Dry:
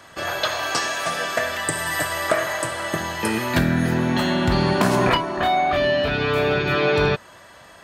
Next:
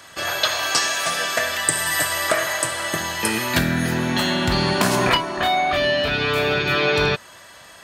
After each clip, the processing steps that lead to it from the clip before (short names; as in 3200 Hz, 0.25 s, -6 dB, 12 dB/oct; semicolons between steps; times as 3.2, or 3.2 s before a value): high shelf 2000 Hz +9.5 dB; gain -2 dB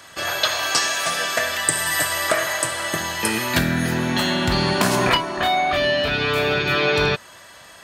nothing audible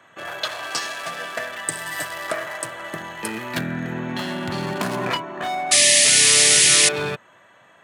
Wiener smoothing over 9 samples; painted sound noise, 5.71–6.89, 1700–11000 Hz -9 dBFS; HPF 110 Hz 24 dB/oct; gain -5.5 dB